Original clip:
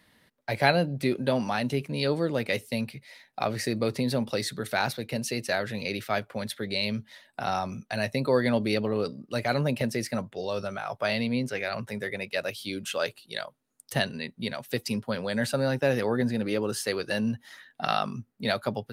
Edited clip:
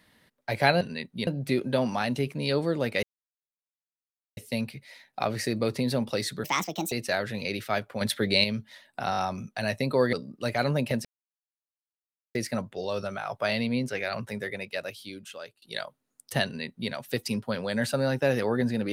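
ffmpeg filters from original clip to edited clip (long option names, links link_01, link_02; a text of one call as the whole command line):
ffmpeg -i in.wav -filter_complex "[0:a]asplit=14[link_01][link_02][link_03][link_04][link_05][link_06][link_07][link_08][link_09][link_10][link_11][link_12][link_13][link_14];[link_01]atrim=end=0.812[link_15];[link_02]atrim=start=14.048:end=14.512[link_16];[link_03]atrim=start=0.808:end=2.57,asetpts=PTS-STARTPTS,afade=type=out:start_time=1.758:duration=0.004:curve=hsin,apad=pad_dur=1.34[link_17];[link_04]atrim=start=2.57:end=4.644,asetpts=PTS-STARTPTS,afade=type=in:duration=0.004:curve=hsin[link_18];[link_05]atrim=start=4.64:end=5.32,asetpts=PTS-STARTPTS,asetrate=62622,aresample=44100,atrim=end_sample=21118,asetpts=PTS-STARTPTS[link_19];[link_06]atrim=start=5.316:end=6.412[link_20];[link_07]atrim=start=6.408:end=6.842,asetpts=PTS-STARTPTS,volume=6.5dB[link_21];[link_08]atrim=start=6.838:end=7.532[link_22];[link_09]atrim=start=7.508:end=7.532[link_23];[link_10]atrim=start=7.508:end=7.532[link_24];[link_11]atrim=start=7.508:end=8.472[link_25];[link_12]atrim=start=9.028:end=9.95,asetpts=PTS-STARTPTS,afade=type=out:start_time=0.918:duration=0.004:curve=hsin,apad=pad_dur=1.3[link_26];[link_13]atrim=start=9.95:end=13.22,asetpts=PTS-STARTPTS,afade=type=in:duration=0.004:curve=hsin,afade=type=out:start_time=1.96:duration=1.31:silence=0.0841395[link_27];[link_14]atrim=start=13.22,asetpts=PTS-STARTPTS,afade=type=in:duration=0.004:curve=hsin:silence=0.0841395[link_28];[link_15][link_16]acrossfade=duration=0.004:curve1=hsin:curve2=hsin[link_29];[link_17][link_18]concat=n=2:v=0:a=1[link_30];[link_29][link_30]acrossfade=duration=0.004:curve1=hsin:curve2=hsin[link_31];[link_31][link_19]acrossfade=duration=0.004:curve1=hsin:curve2=hsin[link_32];[link_32][link_20]acrossfade=duration=0.004:curve1=hsin:curve2=hsin[link_33];[link_33][link_21]acrossfade=duration=0.004:curve1=hsin:curve2=hsin[link_34];[link_34][link_22]acrossfade=duration=0.004:curve1=hsin:curve2=hsin[link_35];[link_35][link_23]acrossfade=duration=0.004:curve1=hsin:curve2=hsin[link_36];[link_36][link_24]acrossfade=duration=0.004:curve1=hsin:curve2=hsin[link_37];[link_37][link_25]acrossfade=duration=0.004:curve1=hsin:curve2=hsin[link_38];[link_26][link_27][link_28]concat=n=3:v=0:a=1[link_39];[link_38][link_39]acrossfade=duration=0.004:curve1=hsin:curve2=hsin" out.wav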